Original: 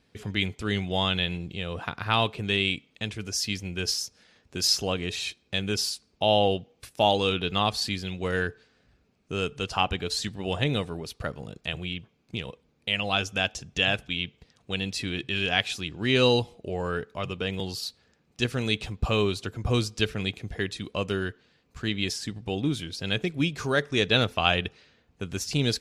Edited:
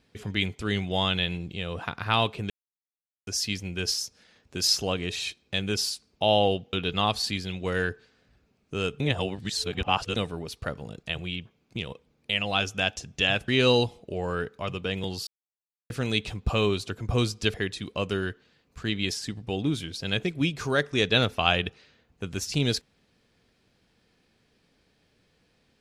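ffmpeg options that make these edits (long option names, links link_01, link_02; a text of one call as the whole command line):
ffmpeg -i in.wav -filter_complex "[0:a]asplit=10[link_01][link_02][link_03][link_04][link_05][link_06][link_07][link_08][link_09][link_10];[link_01]atrim=end=2.5,asetpts=PTS-STARTPTS,afade=type=out:start_time=2.496:duration=0.004:curve=hsin[link_11];[link_02]atrim=start=2.5:end=3.27,asetpts=PTS-STARTPTS,volume=0[link_12];[link_03]atrim=start=3.27:end=6.732,asetpts=PTS-STARTPTS,afade=type=in:duration=0.004:curve=hsin[link_13];[link_04]atrim=start=7.308:end=9.582[link_14];[link_05]atrim=start=9.578:end=10.742,asetpts=PTS-STARTPTS,areverse[link_15];[link_06]atrim=start=10.738:end=14.062[link_16];[link_07]atrim=start=16.038:end=17.83,asetpts=PTS-STARTPTS,afade=type=out:start_time=1.788:duration=0.004:curve=hsin[link_17];[link_08]atrim=start=17.83:end=18.46,asetpts=PTS-STARTPTS,volume=0[link_18];[link_09]atrim=start=18.46:end=20.102,asetpts=PTS-STARTPTS,afade=type=in:duration=0.004:curve=hsin[link_19];[link_10]atrim=start=20.528[link_20];[link_11][link_12][link_13]concat=n=3:v=0:a=1[link_21];[link_21][link_14]acrossfade=duration=0.004:curve1=hsin:curve2=hsin[link_22];[link_22][link_15]acrossfade=duration=0.004:curve1=hsin:curve2=hsin[link_23];[link_23][link_16]acrossfade=duration=0.004:curve1=hsin:curve2=hsin[link_24];[link_17][link_18][link_19]concat=n=3:v=0:a=1[link_25];[link_24][link_25]acrossfade=duration=0.004:curve1=hsin:curve2=hsin[link_26];[link_26][link_20]acrossfade=duration=0.004:curve1=hsin:curve2=hsin" out.wav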